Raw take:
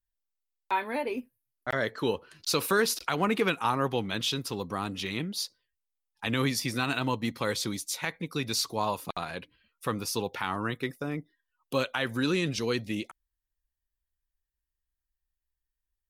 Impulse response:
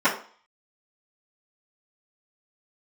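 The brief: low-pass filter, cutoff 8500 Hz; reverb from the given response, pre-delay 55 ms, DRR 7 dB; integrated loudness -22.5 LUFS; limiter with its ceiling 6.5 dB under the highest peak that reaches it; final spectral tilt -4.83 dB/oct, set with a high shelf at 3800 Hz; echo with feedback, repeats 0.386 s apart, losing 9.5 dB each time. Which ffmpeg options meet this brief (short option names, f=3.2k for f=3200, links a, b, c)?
-filter_complex "[0:a]lowpass=8.5k,highshelf=f=3.8k:g=-7,alimiter=limit=-20.5dB:level=0:latency=1,aecho=1:1:386|772|1158|1544:0.335|0.111|0.0365|0.012,asplit=2[a][b];[1:a]atrim=start_sample=2205,adelay=55[c];[b][c]afir=irnorm=-1:irlink=0,volume=-25dB[d];[a][d]amix=inputs=2:normalize=0,volume=10.5dB"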